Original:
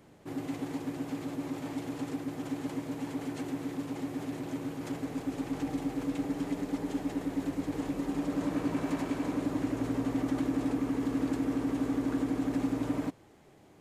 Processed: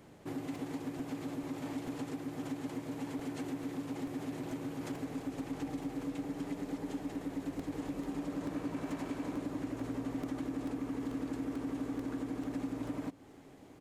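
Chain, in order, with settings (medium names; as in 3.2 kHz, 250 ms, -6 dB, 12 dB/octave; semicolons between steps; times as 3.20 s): compression 3:1, threshold -38 dBFS, peak gain reduction 9.5 dB; echo from a far wall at 240 m, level -21 dB; crackling interface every 0.44 s, samples 128, repeat, from 0.55 s; trim +1 dB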